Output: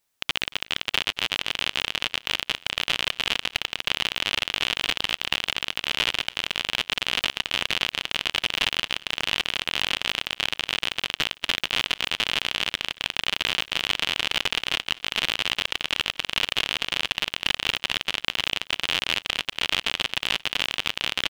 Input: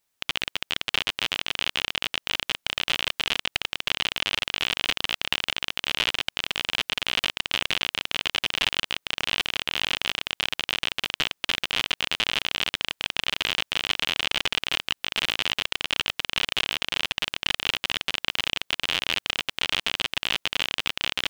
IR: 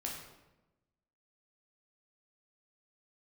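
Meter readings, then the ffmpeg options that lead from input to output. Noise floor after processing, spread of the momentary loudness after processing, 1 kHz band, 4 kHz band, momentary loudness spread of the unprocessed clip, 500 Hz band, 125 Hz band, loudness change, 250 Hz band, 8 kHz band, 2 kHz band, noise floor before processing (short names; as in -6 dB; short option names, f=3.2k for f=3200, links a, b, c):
-56 dBFS, 3 LU, +1.0 dB, +1.0 dB, 3 LU, +1.0 dB, +1.0 dB, +1.0 dB, +1.0 dB, +1.0 dB, +1.0 dB, -76 dBFS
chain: -af "aecho=1:1:229|458|687:0.0841|0.0404|0.0194,volume=1dB"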